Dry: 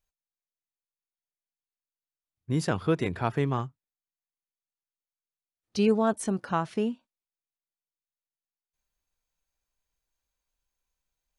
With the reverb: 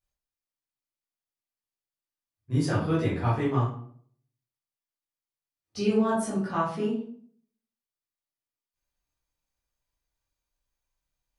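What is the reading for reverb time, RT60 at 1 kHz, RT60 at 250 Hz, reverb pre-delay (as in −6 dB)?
0.55 s, 0.50 s, 0.70 s, 10 ms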